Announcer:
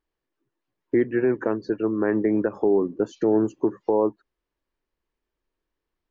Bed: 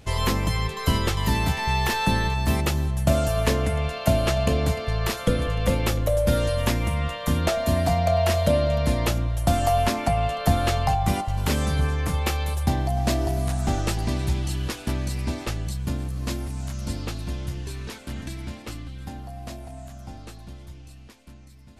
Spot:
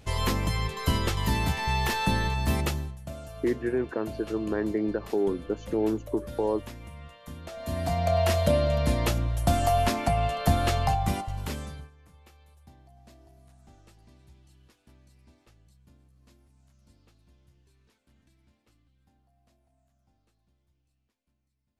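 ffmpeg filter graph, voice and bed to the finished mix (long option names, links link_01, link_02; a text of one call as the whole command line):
ffmpeg -i stem1.wav -i stem2.wav -filter_complex "[0:a]adelay=2500,volume=-6dB[link_01];[1:a]volume=13dB,afade=type=out:start_time=2.64:duration=0.34:silence=0.16788,afade=type=in:start_time=7.49:duration=0.7:silence=0.149624,afade=type=out:start_time=10.86:duration=1.04:silence=0.0375837[link_02];[link_01][link_02]amix=inputs=2:normalize=0" out.wav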